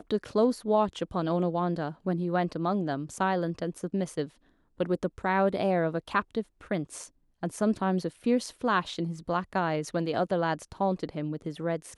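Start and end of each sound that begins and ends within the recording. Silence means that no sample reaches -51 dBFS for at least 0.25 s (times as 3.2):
4.78–7.08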